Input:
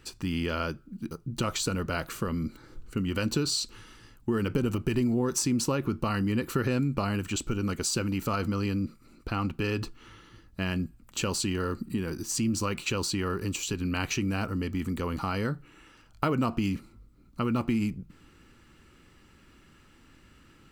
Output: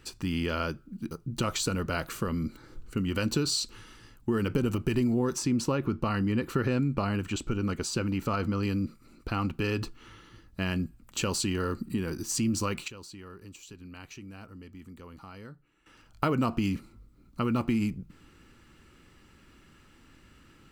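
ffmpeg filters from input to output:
-filter_complex "[0:a]asettb=1/sr,asplit=3[a][b][c];[a]atrim=end=5.344[d];[b]atrim=start=5.34:end=8.63,asetpts=PTS-STARTPTS,afade=t=in:d=0.004:c=qsin,afade=t=out:st=3.286:d=0.004:c=qsin,highshelf=f=5.6k:g=-9.5[e];[c]atrim=start=8.626[f];[d][e]acrossfade=d=0.004:c1=hsin:c2=qsin[g];[g][f]acrossfade=d=0.004:c1=qsin:c2=hsin,asplit=3[h][i][j];[h]atrim=end=12.88,asetpts=PTS-STARTPTS,afade=t=out:st=12.49:d=0.39:c=log:silence=0.158489[k];[i]atrim=start=12.88:end=15.86,asetpts=PTS-STARTPTS,volume=-16dB[l];[j]atrim=start=15.86,asetpts=PTS-STARTPTS,afade=t=in:d=0.39:c=log:silence=0.158489[m];[k][l][m]concat=n=3:v=0:a=1"

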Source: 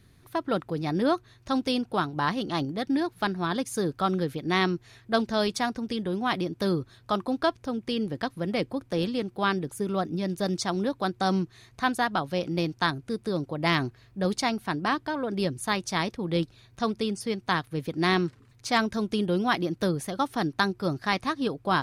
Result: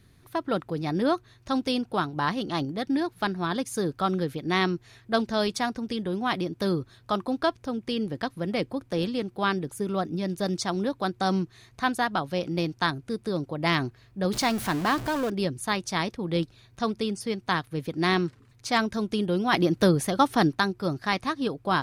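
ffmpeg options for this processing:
-filter_complex "[0:a]asettb=1/sr,asplit=3[a][b][c];[a]atrim=end=14.334[d];[b]atrim=start=14.33:end=15.3,asetpts=PTS-STARTPTS,afade=t=in:d=0.004:c=qsin,afade=t=out:st=0.966:d=0.004:c=qsin,aeval=exprs='val(0)+0.5*0.0316*sgn(val(0))':c=same[e];[c]atrim=start=15.296[f];[d][e]acrossfade=d=0.004:c1=hsin:c2=qsin[g];[g][f]acrossfade=d=0.004:c1=qsin:c2=hsin,asplit=3[h][i][j];[h]atrim=end=19.532[k];[i]atrim=start=19.528:end=20.552,asetpts=PTS-STARTPTS,volume=6dB[l];[j]atrim=start=20.548[m];[k][l]acrossfade=d=0.004:c1=hsin:c2=hsin[n];[n][m]acrossfade=d=0.004:c1=hsin:c2=hsin"

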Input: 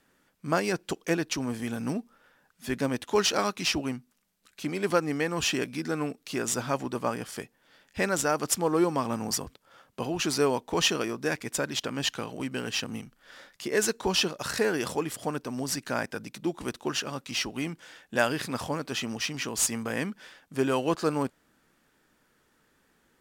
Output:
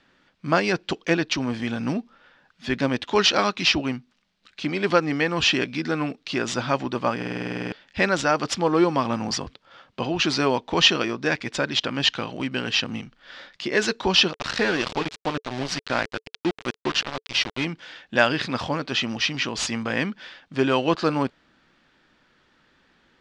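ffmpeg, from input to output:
-filter_complex "[0:a]asettb=1/sr,asplit=3[a][b][c];[a]atrim=end=14.334[d];[b]atrim=start=14.33:end=17.65,asetpts=PTS-STARTPTS,afade=t=in:d=0.004:c=qsin,afade=t=out:st=3.316:d=0.004:c=qsin,aeval=exprs='val(0)*gte(abs(val(0)),0.0282)':c=same[e];[c]atrim=start=17.646[f];[d][e]acrossfade=d=0.004:c1=hsin:c2=qsin[g];[g][f]acrossfade=d=0.004:c1=qsin:c2=hsin,asplit=12[h][i][j][k][l][m][n][o][p][q][r][s];[h]atrim=end=7.222[t];[i]atrim=start=7.168:end=7.222[u];[j]atrim=start=7.168:end=7.222[v];[k]atrim=start=7.168:end=7.222[w];[l]atrim=start=7.168:end=7.222[x];[m]atrim=start=7.168:end=7.222[y];[n]atrim=start=7.168:end=7.222[z];[o]atrim=start=7.168:end=7.222[aa];[p]atrim=start=7.168:end=7.222[ab];[q]atrim=start=7.168:end=7.222[ac];[r]atrim=start=7.168:end=7.222[ad];[s]atrim=start=7.718[ae];[t][u]acrossfade=d=0.004:c1=hsin:c2=hsin[af];[af][v]acrossfade=d=0.004:c1=hsin:c2=hsin[ag];[ag][w]acrossfade=d=0.004:c1=hsin:c2=hsin[ah];[ah][x]acrossfade=d=0.004:c1=hsin:c2=hsin[ai];[ai][y]acrossfade=d=0.004:c1=hsin:c2=hsin[aj];[aj][z]acrossfade=d=0.004:c1=hsin:c2=hsin[ak];[ak][aa]acrossfade=d=0.004:c1=hsin:c2=hsin[al];[al][ab]acrossfade=d=0.004:c1=hsin:c2=hsin[am];[am][ac]acrossfade=d=0.004:c1=hsin:c2=hsin[an];[an][ad]acrossfade=d=0.004:c1=hsin:c2=hsin[ao];[ao][ae]acrossfade=d=0.004:c1=hsin:c2=hsin,lowpass=f=4.1k:w=0.5412,lowpass=f=4.1k:w=1.3066,aemphasis=mode=production:type=75kf,bandreject=f=440:w=12,volume=5dB"

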